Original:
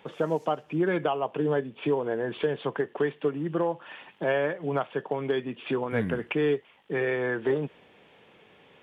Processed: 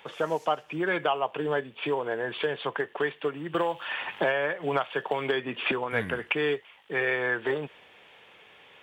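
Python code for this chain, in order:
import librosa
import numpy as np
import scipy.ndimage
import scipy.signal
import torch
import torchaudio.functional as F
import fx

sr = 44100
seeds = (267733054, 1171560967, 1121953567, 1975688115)

y = scipy.signal.sosfilt(scipy.signal.butter(2, 61.0, 'highpass', fs=sr, output='sos'), x)
y = fx.peak_eq(y, sr, hz=200.0, db=-14.0, octaves=3.0)
y = fx.band_squash(y, sr, depth_pct=100, at=(3.54, 5.72))
y = F.gain(torch.from_numpy(y), 6.5).numpy()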